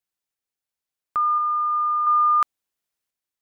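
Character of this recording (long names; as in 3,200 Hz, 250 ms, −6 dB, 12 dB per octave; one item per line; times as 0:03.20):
sample-and-hold tremolo 2.9 Hz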